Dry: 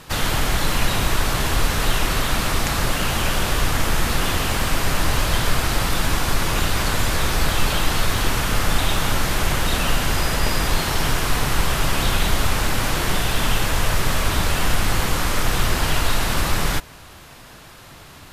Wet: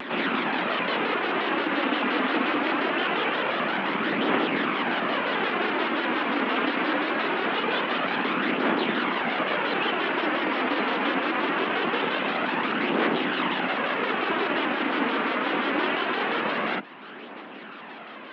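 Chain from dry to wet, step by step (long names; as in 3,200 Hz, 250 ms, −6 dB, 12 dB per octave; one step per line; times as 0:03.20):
sub-octave generator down 1 octave, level +3 dB
flanger 0.23 Hz, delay 0 ms, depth 5.1 ms, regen +42%
in parallel at −5 dB: soft clipping −17 dBFS, distortion −12 dB
on the sum: single-sideband voice off tune +67 Hz 180–3,000 Hz
upward compression, threshold −34 dBFS
backwards echo 202 ms −11.5 dB
pitch modulation by a square or saw wave square 5.7 Hz, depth 100 cents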